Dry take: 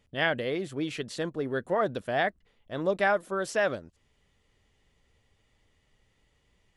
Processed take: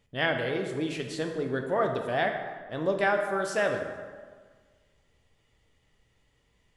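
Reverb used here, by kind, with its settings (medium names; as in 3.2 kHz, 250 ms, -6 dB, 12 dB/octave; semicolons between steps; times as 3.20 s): plate-style reverb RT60 1.6 s, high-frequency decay 0.6×, DRR 3.5 dB; trim -1 dB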